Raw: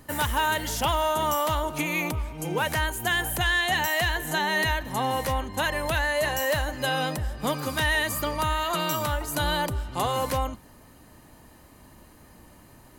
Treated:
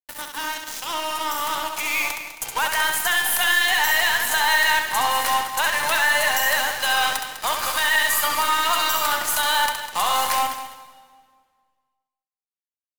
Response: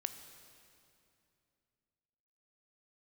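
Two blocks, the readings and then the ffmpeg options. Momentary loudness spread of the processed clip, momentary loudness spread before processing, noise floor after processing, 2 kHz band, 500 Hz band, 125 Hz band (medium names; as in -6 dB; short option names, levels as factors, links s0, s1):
10 LU, 5 LU, under -85 dBFS, +7.0 dB, -3.5 dB, -17.5 dB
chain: -filter_complex "[0:a]highpass=f=810:w=0.5412,highpass=f=810:w=1.3066,asplit=2[s0][s1];[s1]acompressor=threshold=0.0126:ratio=6,volume=0.891[s2];[s0][s2]amix=inputs=2:normalize=0,alimiter=limit=0.119:level=0:latency=1:release=93,dynaudnorm=f=580:g=7:m=2.82,acrusher=bits=3:mix=0:aa=0.5,aeval=exprs='0.299*(cos(1*acos(clip(val(0)/0.299,-1,1)))-cos(1*PI/2))+0.015*(cos(8*acos(clip(val(0)/0.299,-1,1)))-cos(8*PI/2))':c=same,aecho=1:1:201|402:0.266|0.0452,asplit=2[s3][s4];[1:a]atrim=start_sample=2205,asetrate=61740,aresample=44100,adelay=67[s5];[s4][s5]afir=irnorm=-1:irlink=0,volume=0.891[s6];[s3][s6]amix=inputs=2:normalize=0,volume=0.75"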